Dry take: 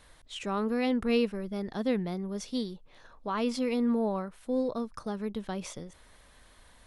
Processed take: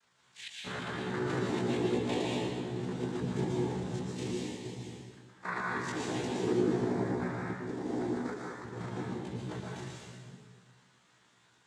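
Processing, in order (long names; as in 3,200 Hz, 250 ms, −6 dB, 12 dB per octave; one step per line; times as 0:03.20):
slices reordered back to front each 94 ms, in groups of 2
parametric band 520 Hz +11 dB 0.28 octaves
phaser with its sweep stopped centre 2,000 Hz, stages 6
in parallel at −9 dB: bit reduction 7 bits
on the sum: cochlear-implant simulation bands 6
time stretch by overlap-add 1.7×, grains 79 ms
dense smooth reverb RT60 1.6 s, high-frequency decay 0.95×, pre-delay 105 ms, DRR −3.5 dB
level −6 dB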